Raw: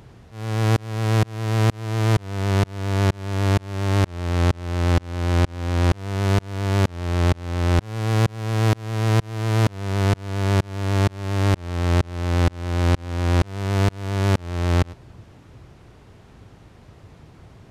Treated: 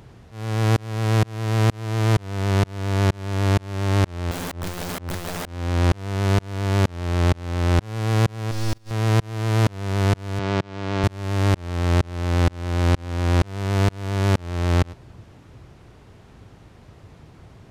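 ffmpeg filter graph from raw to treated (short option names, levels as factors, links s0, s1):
-filter_complex "[0:a]asettb=1/sr,asplit=3[s0][s1][s2];[s0]atrim=end=4.314[s3];[s1]atrim=start=4.31:end=5.49,asetpts=PTS-STARTPTS,afade=t=in:d=0.004:c=qsin,afade=t=out:st=1.176:d=0.004:c=qsin,tiltshelf=f=1300:g=4,aeval=exprs='(mod(16.8*val(0)+1,2)-1)/16.8':c=same[s4];[s2]atrim=start=5.486[s5];[s3][s4]acrossfade=d=0.004:c1=hsin:c2=qsin[s6];[s6][s5]acrossfade=d=0.004:c1=qsin:c2=hsin,asettb=1/sr,asplit=3[s7][s8][s9];[s7]atrim=end=8.514[s10];[s8]atrim=start=8.51:end=8.91,asetpts=PTS-STARTPTS,afade=t=in:d=0.004:c=qsin,afade=t=out:st=0.396:d=0.004:c=qsin,agate=range=0.2:threshold=0.0282:ratio=16:release=100:detection=peak,equalizer=f=5000:t=o:w=1.1:g=12.5,aeval=exprs='max(val(0),0)':c=same[s11];[s9]atrim=start=8.906[s12];[s10][s11]acrossfade=d=0.004:c1=hsin:c2=qsin[s13];[s13][s12]acrossfade=d=0.004:c1=qsin:c2=hsin,asettb=1/sr,asplit=3[s14][s15][s16];[s14]atrim=end=10.394[s17];[s15]atrim=start=10.39:end=11.04,asetpts=PTS-STARTPTS,afade=t=in:d=0.004:c=qsin,afade=t=out:st=0.646:d=0.004:c=qsin,highpass=140,lowpass=4800,bandreject=f=1800:w=22[s18];[s16]atrim=start=11.036[s19];[s17][s18]acrossfade=d=0.004:c1=hsin:c2=qsin[s20];[s20][s19]acrossfade=d=0.004:c1=qsin:c2=hsin"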